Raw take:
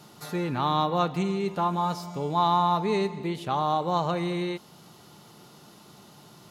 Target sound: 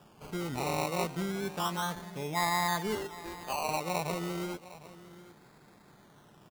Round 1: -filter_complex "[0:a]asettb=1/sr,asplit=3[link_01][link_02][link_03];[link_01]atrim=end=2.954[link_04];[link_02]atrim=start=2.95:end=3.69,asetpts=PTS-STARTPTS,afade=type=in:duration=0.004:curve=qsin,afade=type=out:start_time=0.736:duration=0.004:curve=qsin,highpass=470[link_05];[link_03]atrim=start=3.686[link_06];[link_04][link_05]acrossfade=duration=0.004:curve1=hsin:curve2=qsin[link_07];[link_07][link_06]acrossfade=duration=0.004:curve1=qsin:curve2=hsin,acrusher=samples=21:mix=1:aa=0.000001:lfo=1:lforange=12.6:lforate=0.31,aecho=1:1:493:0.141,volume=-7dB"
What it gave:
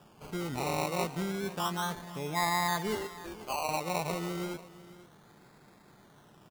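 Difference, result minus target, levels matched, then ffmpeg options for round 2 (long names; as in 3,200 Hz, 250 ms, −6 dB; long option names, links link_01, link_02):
echo 264 ms early
-filter_complex "[0:a]asettb=1/sr,asplit=3[link_01][link_02][link_03];[link_01]atrim=end=2.954[link_04];[link_02]atrim=start=2.95:end=3.69,asetpts=PTS-STARTPTS,afade=type=in:duration=0.004:curve=qsin,afade=type=out:start_time=0.736:duration=0.004:curve=qsin,highpass=470[link_05];[link_03]atrim=start=3.686[link_06];[link_04][link_05]acrossfade=duration=0.004:curve1=hsin:curve2=qsin[link_07];[link_07][link_06]acrossfade=duration=0.004:curve1=qsin:curve2=hsin,acrusher=samples=21:mix=1:aa=0.000001:lfo=1:lforange=12.6:lforate=0.31,aecho=1:1:757:0.141,volume=-7dB"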